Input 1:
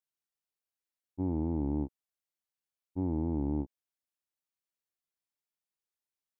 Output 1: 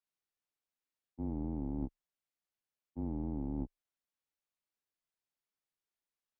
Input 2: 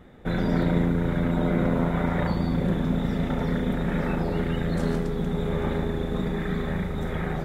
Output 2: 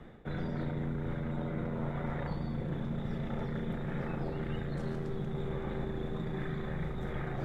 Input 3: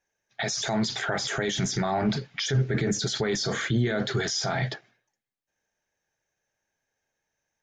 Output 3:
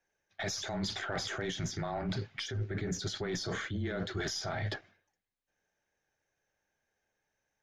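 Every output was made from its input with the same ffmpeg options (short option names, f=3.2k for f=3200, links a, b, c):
-af "afreqshift=-24,highshelf=f=6.4k:g=-10,areverse,acompressor=threshold=-33dB:ratio=6,areverse,aeval=exprs='0.0631*(cos(1*acos(clip(val(0)/0.0631,-1,1)))-cos(1*PI/2))+0.00355*(cos(4*acos(clip(val(0)/0.0631,-1,1)))-cos(4*PI/2))+0.000562*(cos(6*acos(clip(val(0)/0.0631,-1,1)))-cos(6*PI/2))':c=same"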